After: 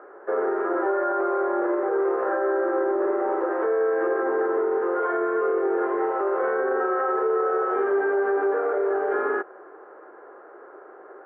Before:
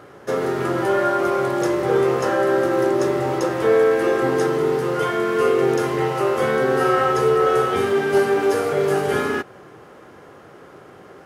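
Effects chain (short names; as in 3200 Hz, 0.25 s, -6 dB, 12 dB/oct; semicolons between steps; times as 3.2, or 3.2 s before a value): elliptic band-pass 360–1600 Hz, stop band 80 dB; limiter -16 dBFS, peak gain reduction 9 dB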